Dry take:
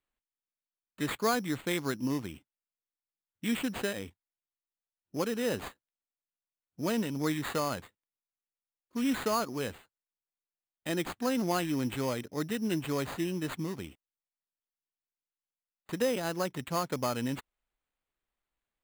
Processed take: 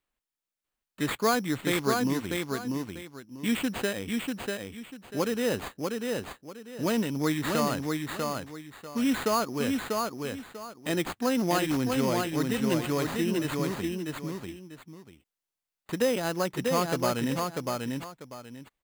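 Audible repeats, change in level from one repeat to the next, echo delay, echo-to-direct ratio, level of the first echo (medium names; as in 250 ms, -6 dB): 2, -11.5 dB, 643 ms, -3.0 dB, -3.5 dB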